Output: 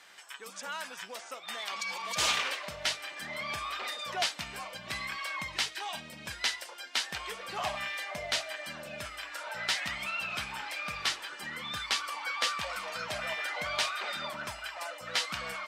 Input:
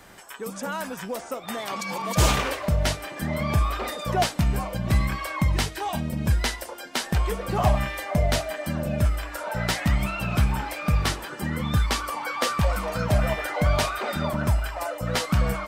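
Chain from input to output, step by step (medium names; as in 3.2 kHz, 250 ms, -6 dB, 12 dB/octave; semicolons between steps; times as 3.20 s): band-pass filter 3.4 kHz, Q 0.78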